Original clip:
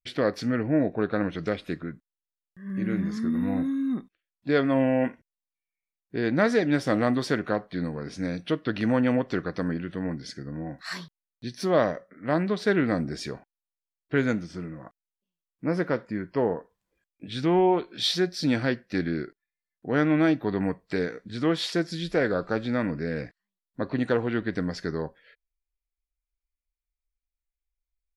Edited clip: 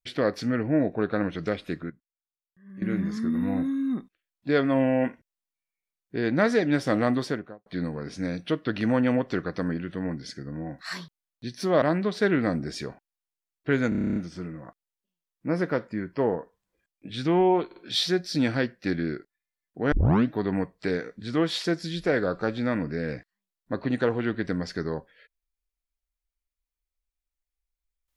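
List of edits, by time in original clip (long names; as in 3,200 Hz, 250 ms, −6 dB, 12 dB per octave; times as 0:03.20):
0:01.90–0:02.82: clip gain −12 dB
0:07.14–0:07.66: fade out and dull
0:11.82–0:12.27: remove
0:14.34: stutter 0.03 s, 10 plays
0:17.84: stutter 0.05 s, 3 plays
0:20.00: tape start 0.39 s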